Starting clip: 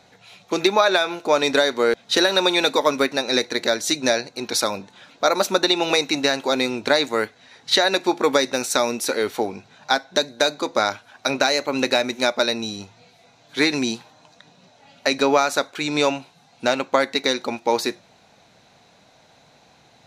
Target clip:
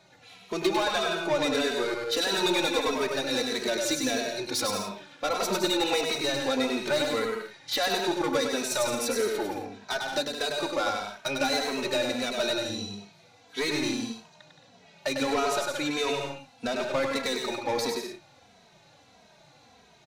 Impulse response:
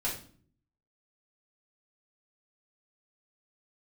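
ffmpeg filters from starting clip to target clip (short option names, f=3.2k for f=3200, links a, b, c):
-filter_complex "[0:a]asoftclip=type=tanh:threshold=-17.5dB,asplit=2[a][b];[b]aecho=0:1:100|170|219|253.3|277.3:0.631|0.398|0.251|0.158|0.1[c];[a][c]amix=inputs=2:normalize=0,asplit=2[d][e];[e]adelay=2.8,afreqshift=-1.6[f];[d][f]amix=inputs=2:normalize=1,volume=-2dB"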